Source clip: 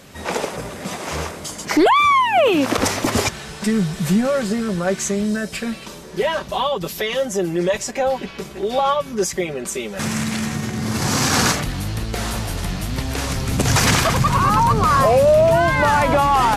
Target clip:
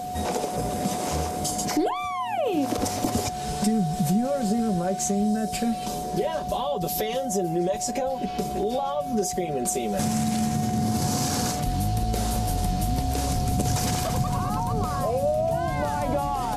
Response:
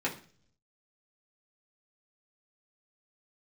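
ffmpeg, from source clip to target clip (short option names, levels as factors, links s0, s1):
-filter_complex "[0:a]acompressor=threshold=0.0398:ratio=5,aeval=exprs='val(0)+0.0282*sin(2*PI*730*n/s)':c=same,equalizer=f=1800:w=0.49:g=-13.5,asplit=2[s0][s1];[1:a]atrim=start_sample=2205,asetrate=88200,aresample=44100[s2];[s1][s2]afir=irnorm=-1:irlink=0,volume=0.266[s3];[s0][s3]amix=inputs=2:normalize=0,volume=2.11"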